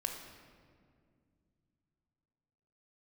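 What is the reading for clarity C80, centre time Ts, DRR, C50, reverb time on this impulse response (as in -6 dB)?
6.5 dB, 43 ms, 3.0 dB, 5.0 dB, 2.2 s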